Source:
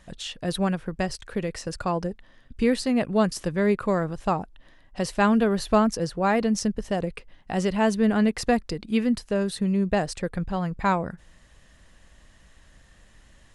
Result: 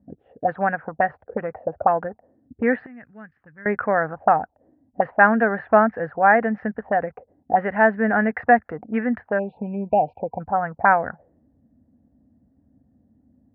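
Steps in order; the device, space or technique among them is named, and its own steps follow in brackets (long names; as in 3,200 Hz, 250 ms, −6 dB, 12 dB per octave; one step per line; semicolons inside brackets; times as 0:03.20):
envelope filter bass rig (envelope-controlled low-pass 230–1,700 Hz up, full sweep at −22.5 dBFS; loudspeaker in its box 89–2,100 Hz, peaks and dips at 120 Hz −9 dB, 180 Hz −10 dB, 360 Hz −9 dB, 740 Hz +9 dB, 1,100 Hz −6 dB)
0:02.86–0:03.66: guitar amp tone stack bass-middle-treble 6-0-2
0:09.39–0:10.41: time-frequency box erased 990–2,300 Hz
level +2.5 dB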